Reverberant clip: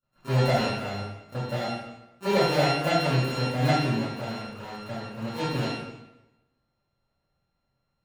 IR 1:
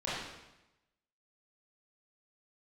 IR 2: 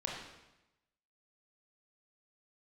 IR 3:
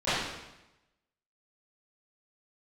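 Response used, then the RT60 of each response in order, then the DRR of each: 3; 0.95, 0.95, 0.95 s; -10.0, -2.5, -19.5 dB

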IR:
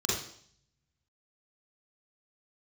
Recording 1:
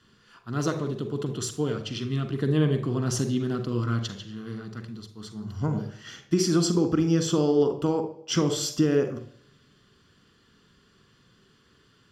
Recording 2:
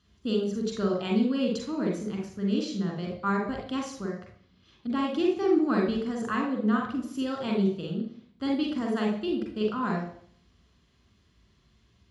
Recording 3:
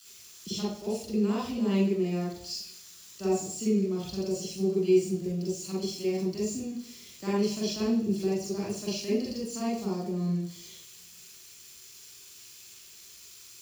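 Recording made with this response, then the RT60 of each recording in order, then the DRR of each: 3; 0.60, 0.60, 0.60 s; 7.5, -1.0, -6.5 dB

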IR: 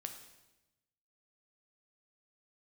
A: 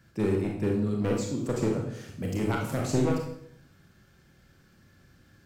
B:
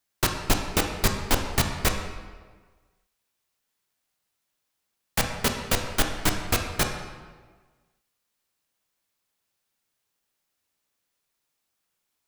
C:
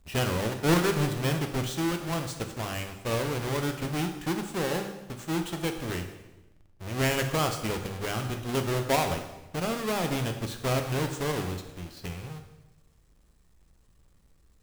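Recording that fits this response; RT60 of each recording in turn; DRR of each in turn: C; 0.70, 1.5, 1.0 s; -0.5, 3.5, 5.0 dB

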